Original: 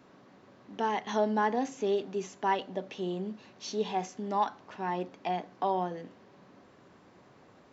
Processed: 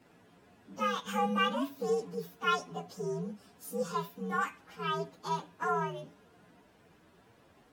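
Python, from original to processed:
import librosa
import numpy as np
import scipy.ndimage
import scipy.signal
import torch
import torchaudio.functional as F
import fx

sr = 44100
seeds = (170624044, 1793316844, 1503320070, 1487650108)

y = fx.partial_stretch(x, sr, pct=127)
y = fx.dynamic_eq(y, sr, hz=2900.0, q=1.1, threshold_db=-52.0, ratio=4.0, max_db=5)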